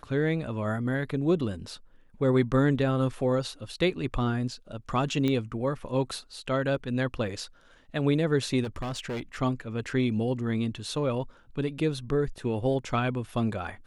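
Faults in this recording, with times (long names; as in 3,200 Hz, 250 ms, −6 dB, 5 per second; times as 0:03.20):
0:05.28: click −16 dBFS
0:08.63–0:09.42: clipping −29.5 dBFS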